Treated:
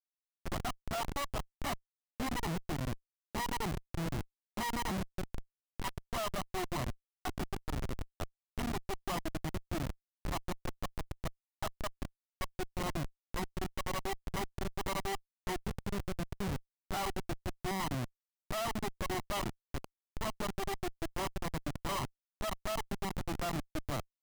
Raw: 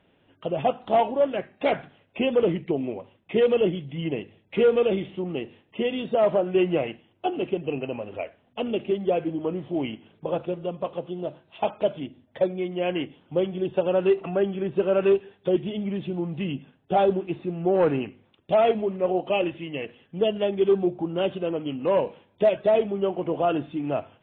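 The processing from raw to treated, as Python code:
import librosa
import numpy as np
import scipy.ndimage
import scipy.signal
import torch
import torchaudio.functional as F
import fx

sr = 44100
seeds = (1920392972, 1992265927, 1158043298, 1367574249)

y = fx.lower_of_two(x, sr, delay_ms=1.0)
y = fx.ellip_bandstop(y, sr, low_hz=170.0, high_hz=820.0, order=3, stop_db=40, at=(5.28, 5.98), fade=0.02)
y = fx.schmitt(y, sr, flips_db=-29.0)
y = y * 10.0 ** (-5.0 / 20.0)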